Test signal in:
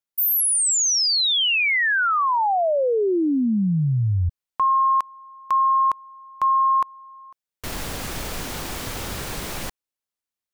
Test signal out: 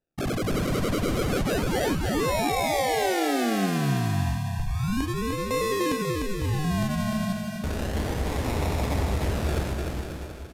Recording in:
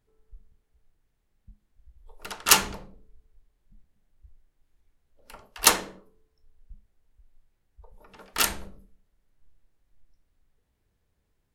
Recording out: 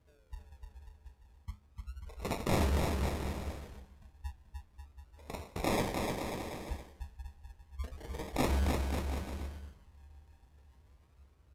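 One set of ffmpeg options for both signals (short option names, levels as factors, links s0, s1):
-filter_complex "[0:a]highpass=43,equalizer=f=70:t=o:w=0.74:g=14.5,bandreject=f=180.4:t=h:w=4,bandreject=f=360.8:t=h:w=4,bandreject=f=541.2:t=h:w=4,bandreject=f=721.6:t=h:w=4,bandreject=f=902:t=h:w=4,bandreject=f=1082.4:t=h:w=4,bandreject=f=1262.8:t=h:w=4,bandreject=f=1443.2:t=h:w=4,bandreject=f=1623.6:t=h:w=4,bandreject=f=1804:t=h:w=4,bandreject=f=1984.4:t=h:w=4,bandreject=f=2164.8:t=h:w=4,bandreject=f=2345.2:t=h:w=4,bandreject=f=2525.6:t=h:w=4,bandreject=f=2706:t=h:w=4,bandreject=f=2886.4:t=h:w=4,bandreject=f=3066.8:t=h:w=4,bandreject=f=3247.2:t=h:w=4,bandreject=f=3427.6:t=h:w=4,bandreject=f=3608:t=h:w=4,bandreject=f=3788.4:t=h:w=4,bandreject=f=3968.8:t=h:w=4,bandreject=f=4149.2:t=h:w=4,bandreject=f=4329.6:t=h:w=4,bandreject=f=4510:t=h:w=4,bandreject=f=4690.4:t=h:w=4,bandreject=f=4870.8:t=h:w=4,bandreject=f=5051.2:t=h:w=4,bandreject=f=5231.6:t=h:w=4,dynaudnorm=f=750:g=5:m=3.76,alimiter=limit=0.316:level=0:latency=1:release=148,areverse,acompressor=threshold=0.0355:ratio=10:attack=4.8:release=97:knee=1:detection=peak,areverse,acrusher=samples=40:mix=1:aa=0.000001:lfo=1:lforange=24:lforate=0.32,flanger=delay=6.3:depth=9.5:regen=79:speed=0.49:shape=sinusoidal,asplit=2[s0][s1];[s1]aecho=0:1:300|540|732|885.6|1008:0.631|0.398|0.251|0.158|0.1[s2];[s0][s2]amix=inputs=2:normalize=0,aresample=32000,aresample=44100,volume=2.37"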